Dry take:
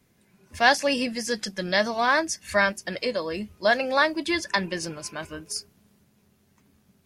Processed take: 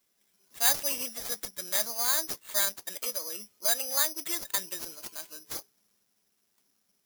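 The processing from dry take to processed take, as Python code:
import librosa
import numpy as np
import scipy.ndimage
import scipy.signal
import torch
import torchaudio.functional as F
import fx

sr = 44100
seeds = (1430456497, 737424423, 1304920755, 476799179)

y = scipy.signal.sosfilt(scipy.signal.butter(2, 240.0, 'highpass', fs=sr, output='sos'), x)
y = fx.low_shelf(y, sr, hz=340.0, db=-5.5)
y = (np.kron(y[::8], np.eye(8)[0]) * 8)[:len(y)]
y = F.gain(torch.from_numpy(y), -14.0).numpy()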